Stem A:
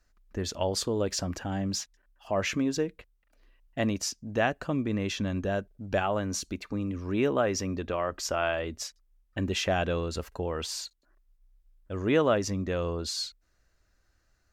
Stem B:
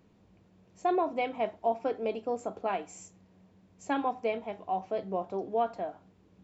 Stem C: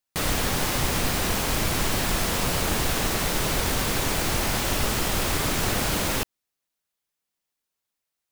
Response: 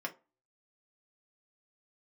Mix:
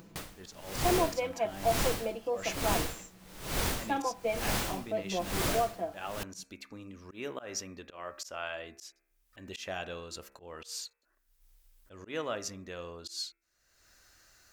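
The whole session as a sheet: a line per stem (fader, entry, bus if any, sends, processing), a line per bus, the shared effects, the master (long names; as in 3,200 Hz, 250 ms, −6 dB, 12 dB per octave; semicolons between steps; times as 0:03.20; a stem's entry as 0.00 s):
−9.0 dB, 0.00 s, no send, spectral tilt +2.5 dB per octave; hum removal 67.29 Hz, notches 39; volume swells 128 ms
−4.0 dB, 0.00 s, no send, comb filter 6 ms, depth 83%
+2.0 dB, 0.00 s, no send, tremolo with a sine in dB 1.1 Hz, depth 31 dB; automatic ducking −7 dB, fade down 0.30 s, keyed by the second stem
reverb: not used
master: upward compression, threshold −45 dBFS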